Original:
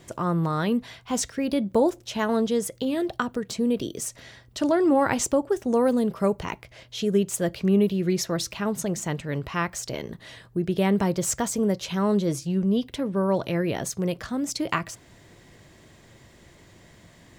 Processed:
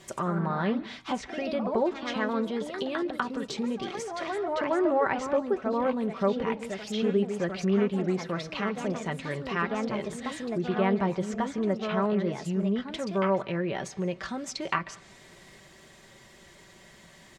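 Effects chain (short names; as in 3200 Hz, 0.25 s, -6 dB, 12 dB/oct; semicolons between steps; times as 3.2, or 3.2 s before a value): in parallel at -2 dB: compressor, threshold -31 dBFS, peak gain reduction 14.5 dB; on the sum: low shelf 440 Hz -8 dB; comb 5.2 ms, depth 50%; echoes that change speed 0.102 s, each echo +2 st, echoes 3, each echo -6 dB; treble ducked by the level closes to 2300 Hz, closed at -22 dBFS; on a send at -21.5 dB: reverb, pre-delay 0.137 s; on the sum: gain -3.5 dB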